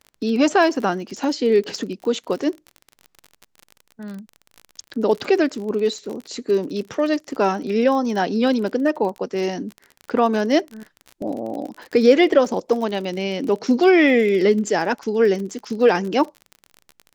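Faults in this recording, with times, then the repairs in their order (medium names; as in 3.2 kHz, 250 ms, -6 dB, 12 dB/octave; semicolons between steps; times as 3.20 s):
crackle 36 per s -28 dBFS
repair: de-click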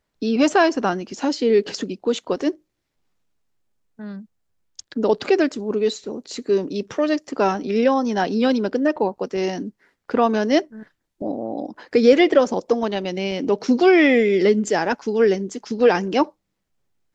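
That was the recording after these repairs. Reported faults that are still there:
nothing left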